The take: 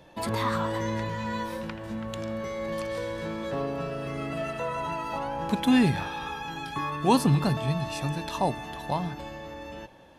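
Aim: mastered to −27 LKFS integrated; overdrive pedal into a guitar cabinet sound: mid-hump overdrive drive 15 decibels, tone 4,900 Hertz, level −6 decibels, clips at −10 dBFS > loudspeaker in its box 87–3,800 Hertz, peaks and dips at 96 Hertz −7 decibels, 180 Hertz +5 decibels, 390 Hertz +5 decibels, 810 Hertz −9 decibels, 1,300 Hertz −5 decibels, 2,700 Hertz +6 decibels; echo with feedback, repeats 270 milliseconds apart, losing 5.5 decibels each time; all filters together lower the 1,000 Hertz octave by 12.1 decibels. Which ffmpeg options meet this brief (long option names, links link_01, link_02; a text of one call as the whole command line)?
ffmpeg -i in.wav -filter_complex "[0:a]equalizer=frequency=1000:width_type=o:gain=-8.5,aecho=1:1:270|540|810|1080|1350|1620|1890:0.531|0.281|0.149|0.079|0.0419|0.0222|0.0118,asplit=2[link_01][link_02];[link_02]highpass=frequency=720:poles=1,volume=15dB,asoftclip=type=tanh:threshold=-10dB[link_03];[link_01][link_03]amix=inputs=2:normalize=0,lowpass=frequency=4900:poles=1,volume=-6dB,highpass=87,equalizer=frequency=96:width_type=q:width=4:gain=-7,equalizer=frequency=180:width_type=q:width=4:gain=5,equalizer=frequency=390:width_type=q:width=4:gain=5,equalizer=frequency=810:width_type=q:width=4:gain=-9,equalizer=frequency=1300:width_type=q:width=4:gain=-5,equalizer=frequency=2700:width_type=q:width=4:gain=6,lowpass=frequency=3800:width=0.5412,lowpass=frequency=3800:width=1.3066,volume=-1.5dB" out.wav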